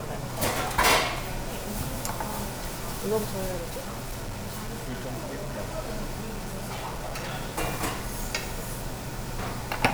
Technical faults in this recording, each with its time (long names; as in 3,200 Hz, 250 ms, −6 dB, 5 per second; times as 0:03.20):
0:03.59–0:05.60: clipping −30 dBFS
0:06.20–0:07.34: clipping −30 dBFS